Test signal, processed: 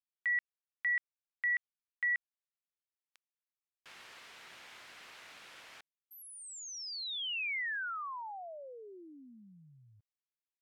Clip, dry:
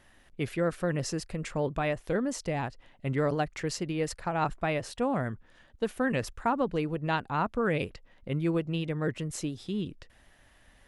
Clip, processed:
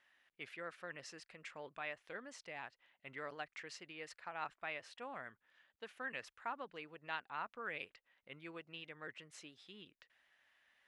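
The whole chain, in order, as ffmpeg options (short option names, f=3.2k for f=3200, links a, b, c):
-af "bandpass=f=2.2k:t=q:w=0.97:csg=0,volume=-8dB"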